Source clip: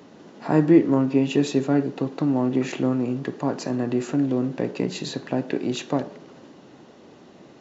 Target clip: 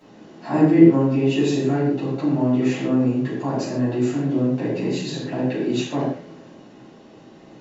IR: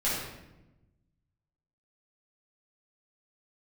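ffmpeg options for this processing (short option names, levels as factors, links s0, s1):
-filter_complex "[1:a]atrim=start_sample=2205,afade=t=out:st=0.26:d=0.01,atrim=end_sample=11907,asetrate=57330,aresample=44100[s0];[0:a][s0]afir=irnorm=-1:irlink=0,volume=0.531"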